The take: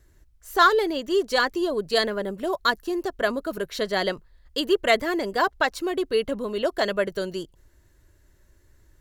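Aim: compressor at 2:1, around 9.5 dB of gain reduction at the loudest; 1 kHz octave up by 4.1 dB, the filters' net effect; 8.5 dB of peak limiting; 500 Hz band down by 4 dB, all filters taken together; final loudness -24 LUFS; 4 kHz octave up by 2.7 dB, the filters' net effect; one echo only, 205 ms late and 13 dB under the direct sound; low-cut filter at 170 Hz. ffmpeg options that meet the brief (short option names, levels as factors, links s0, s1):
-af "highpass=170,equalizer=f=500:t=o:g=-7.5,equalizer=f=1000:t=o:g=7,equalizer=f=4000:t=o:g=3,acompressor=threshold=0.0501:ratio=2,alimiter=limit=0.126:level=0:latency=1,aecho=1:1:205:0.224,volume=2.11"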